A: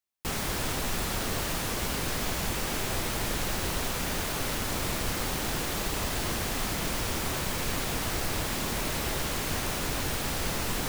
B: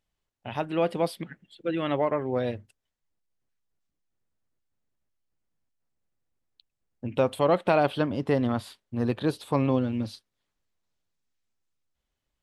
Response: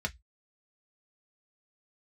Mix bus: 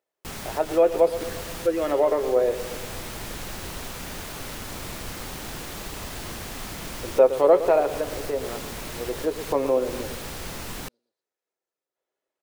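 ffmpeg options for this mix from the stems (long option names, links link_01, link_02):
-filter_complex "[0:a]volume=-4.5dB[link_01];[1:a]highpass=frequency=430:width_type=q:width=3.7,volume=4dB,afade=type=out:start_time=7.48:duration=0.46:silence=0.398107,afade=type=in:start_time=9.08:duration=0.33:silence=0.446684,asplit=4[link_02][link_03][link_04][link_05];[link_03]volume=-7dB[link_06];[link_04]volume=-10dB[link_07];[link_05]apad=whole_len=479981[link_08];[link_01][link_08]sidechaincompress=threshold=-27dB:ratio=8:attack=5.3:release=202[link_09];[2:a]atrim=start_sample=2205[link_10];[link_06][link_10]afir=irnorm=-1:irlink=0[link_11];[link_07]aecho=0:1:117|234|351|468|585|702|819|936|1053:1|0.59|0.348|0.205|0.121|0.0715|0.0422|0.0249|0.0147[link_12];[link_09][link_02][link_11][link_12]amix=inputs=4:normalize=0"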